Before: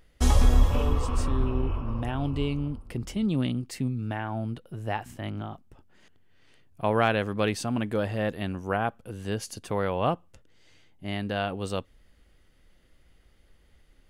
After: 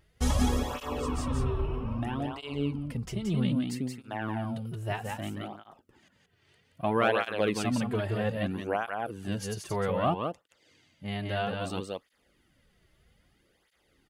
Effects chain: 4.22–5.38 high shelf 4000 Hz +7.5 dB; echo 0.175 s -4 dB; tape flanging out of phase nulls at 0.62 Hz, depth 4.2 ms

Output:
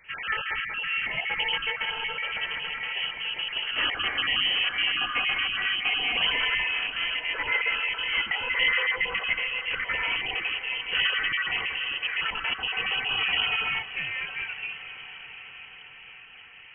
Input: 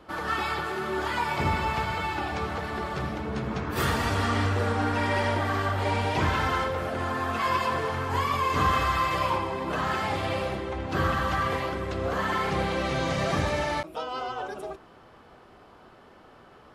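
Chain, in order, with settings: random spectral dropouts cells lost 29%; HPF 210 Hz 6 dB/oct; low shelf 270 Hz +7 dB; on a send: diffused feedback echo 0.71 s, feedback 61%, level -13 dB; on the sum: inverted band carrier 3100 Hz

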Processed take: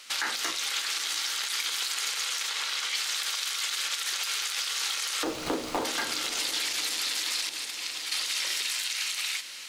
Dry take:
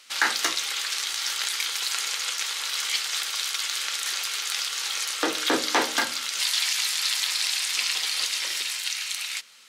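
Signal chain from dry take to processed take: 5.24–5.85 median filter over 25 samples; limiter -18 dBFS, peak gain reduction 10 dB; 2.49–2.95 high shelf 7900 Hz -11 dB; 7.49–8.12 expander -22 dBFS; compressor 3:1, threshold -32 dBFS, peak gain reduction 7 dB; diffused feedback echo 0.607 s, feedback 56%, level -12.5 dB; gain +4 dB

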